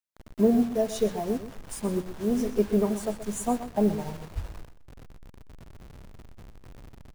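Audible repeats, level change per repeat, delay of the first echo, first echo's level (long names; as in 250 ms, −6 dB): 2, −15.0 dB, 126 ms, −12.5 dB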